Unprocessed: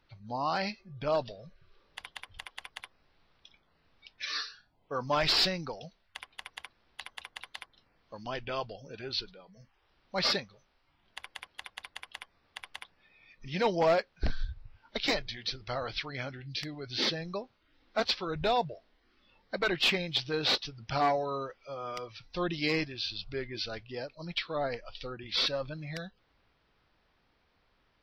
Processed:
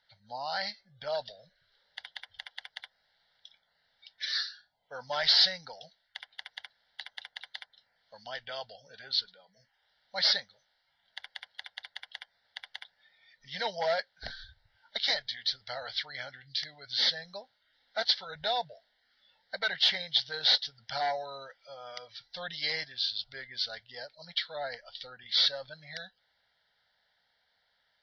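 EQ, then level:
high-frequency loss of the air 130 metres
spectral tilt +4.5 dB per octave
phaser with its sweep stopped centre 1,700 Hz, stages 8
0.0 dB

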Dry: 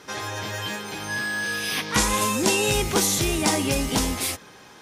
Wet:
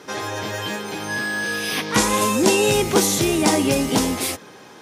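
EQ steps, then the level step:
high-pass filter 88 Hz
parametric band 380 Hz +5.5 dB 2.3 octaves
+1.5 dB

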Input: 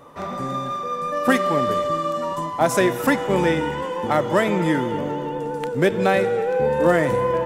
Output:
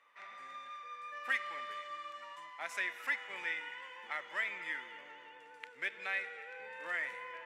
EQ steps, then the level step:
resonant band-pass 2,100 Hz, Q 3.2
spectral tilt +2.5 dB per octave
−8.5 dB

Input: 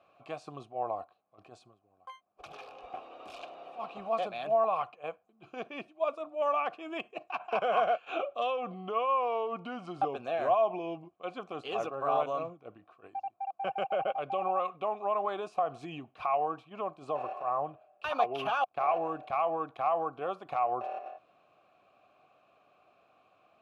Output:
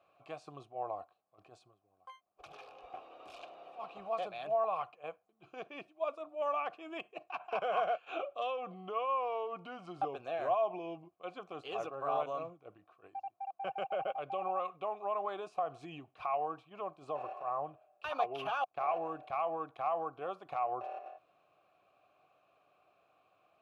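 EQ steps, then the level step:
parametric band 230 Hz −10.5 dB 0.22 octaves
−5.0 dB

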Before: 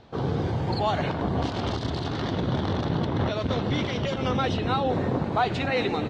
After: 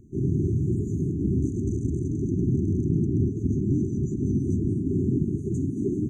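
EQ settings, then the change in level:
linear-phase brick-wall band-stop 410–5,900 Hz
notch filter 5,800 Hz, Q 11
+3.5 dB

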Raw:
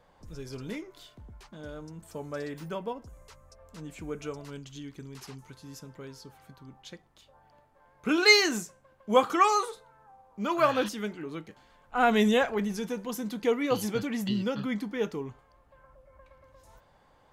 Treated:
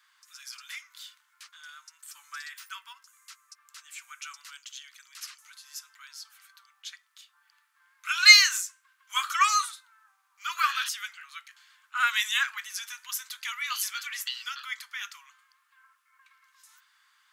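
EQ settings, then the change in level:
Butterworth high-pass 1,200 Hz 48 dB per octave
parametric band 6,100 Hz +3.5 dB 2.5 octaves
high-shelf EQ 9,500 Hz +5.5 dB
+3.5 dB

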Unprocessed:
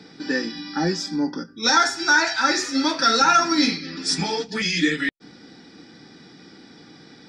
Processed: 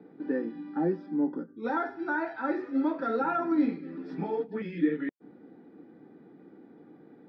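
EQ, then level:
resonant band-pass 410 Hz, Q 0.98
high-frequency loss of the air 460 metres
−1.5 dB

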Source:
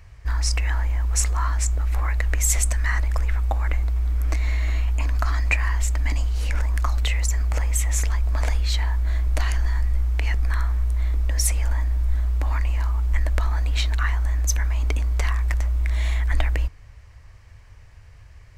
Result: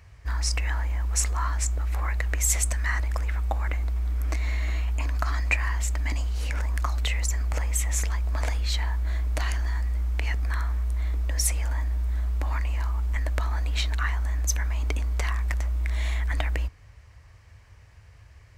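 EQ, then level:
high-pass filter 55 Hz
−2.0 dB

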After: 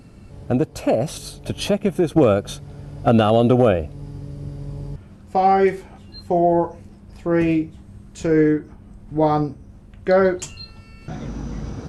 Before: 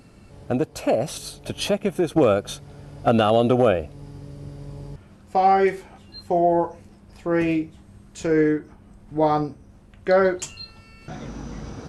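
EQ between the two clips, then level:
low-shelf EQ 310 Hz +7 dB
0.0 dB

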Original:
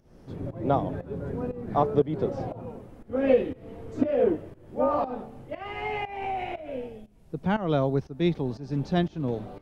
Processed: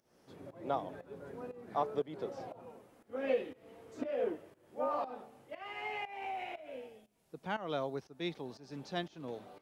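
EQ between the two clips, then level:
high-pass filter 710 Hz 6 dB per octave
high-shelf EQ 4,800 Hz +5.5 dB
−6.5 dB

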